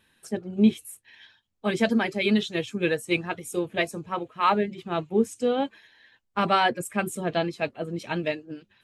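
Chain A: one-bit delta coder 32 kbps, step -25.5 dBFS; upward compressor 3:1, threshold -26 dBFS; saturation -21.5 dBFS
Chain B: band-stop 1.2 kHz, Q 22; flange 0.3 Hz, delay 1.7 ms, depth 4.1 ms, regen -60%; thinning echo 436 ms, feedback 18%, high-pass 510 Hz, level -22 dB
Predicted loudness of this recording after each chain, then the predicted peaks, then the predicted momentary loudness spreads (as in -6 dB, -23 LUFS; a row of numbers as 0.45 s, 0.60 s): -28.5 LUFS, -30.5 LUFS; -21.5 dBFS, -13.0 dBFS; 3 LU, 12 LU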